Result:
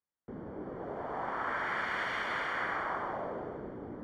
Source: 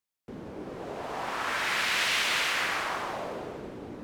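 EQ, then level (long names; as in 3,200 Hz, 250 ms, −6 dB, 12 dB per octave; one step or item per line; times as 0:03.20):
Savitzky-Golay smoothing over 41 samples
−2.0 dB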